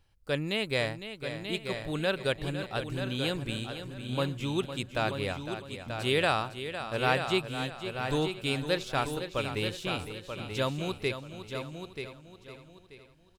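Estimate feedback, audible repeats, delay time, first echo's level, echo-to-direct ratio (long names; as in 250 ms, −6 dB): repeats not evenly spaced, 9, 507 ms, −10.5 dB, −5.5 dB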